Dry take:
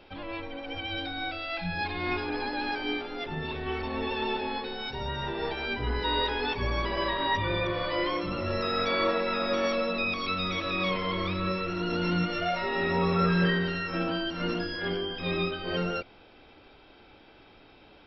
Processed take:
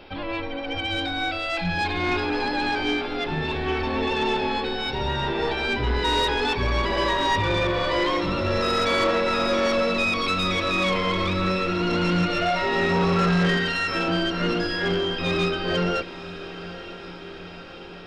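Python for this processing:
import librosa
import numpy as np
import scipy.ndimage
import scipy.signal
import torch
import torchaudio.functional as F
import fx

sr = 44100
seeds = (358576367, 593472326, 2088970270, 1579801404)

y = fx.tilt_shelf(x, sr, db=-4.5, hz=1200.0, at=(13.57, 14.08))
y = 10.0 ** (-24.5 / 20.0) * np.tanh(y / 10.0 ** (-24.5 / 20.0))
y = fx.echo_diffused(y, sr, ms=929, feedback_pct=66, wet_db=-15.0)
y = y * librosa.db_to_amplitude(8.0)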